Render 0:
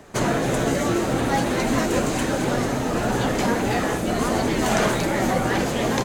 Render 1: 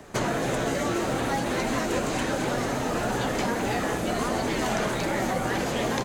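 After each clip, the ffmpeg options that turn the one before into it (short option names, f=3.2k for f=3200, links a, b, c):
-filter_complex "[0:a]acrossover=split=470|6100[a][b][c];[a]acompressor=threshold=-29dB:ratio=4[d];[b]acompressor=threshold=-27dB:ratio=4[e];[c]acompressor=threshold=-44dB:ratio=4[f];[d][e][f]amix=inputs=3:normalize=0"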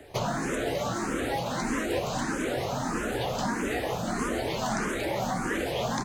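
-filter_complex "[0:a]asplit=2[a][b];[b]afreqshift=1.6[c];[a][c]amix=inputs=2:normalize=1"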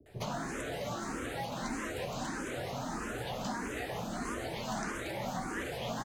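-filter_complex "[0:a]acrossover=split=400[a][b];[b]adelay=60[c];[a][c]amix=inputs=2:normalize=0,volume=-7dB"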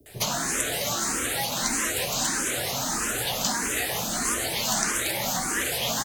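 -af "crystalizer=i=7.5:c=0,volume=4dB"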